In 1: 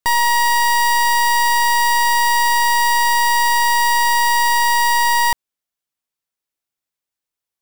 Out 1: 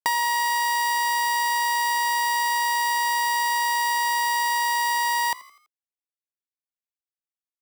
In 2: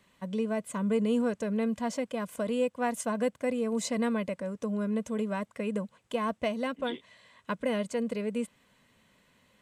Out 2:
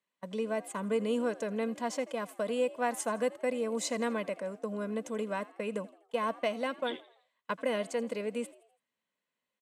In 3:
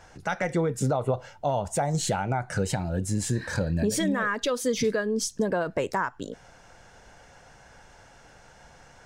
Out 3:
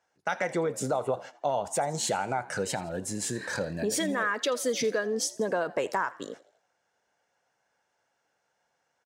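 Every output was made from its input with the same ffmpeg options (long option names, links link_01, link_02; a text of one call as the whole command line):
ffmpeg -i in.wav -filter_complex "[0:a]agate=range=-22dB:threshold=-40dB:ratio=16:detection=peak,highpass=120,bass=frequency=250:gain=-10,treble=frequency=4000:gain=0,acompressor=threshold=-22dB:ratio=4,asplit=2[link_01][link_02];[link_02]asplit=4[link_03][link_04][link_05][link_06];[link_03]adelay=83,afreqshift=68,volume=-20dB[link_07];[link_04]adelay=166,afreqshift=136,volume=-26.6dB[link_08];[link_05]adelay=249,afreqshift=204,volume=-33.1dB[link_09];[link_06]adelay=332,afreqshift=272,volume=-39.7dB[link_10];[link_07][link_08][link_09][link_10]amix=inputs=4:normalize=0[link_11];[link_01][link_11]amix=inputs=2:normalize=0" out.wav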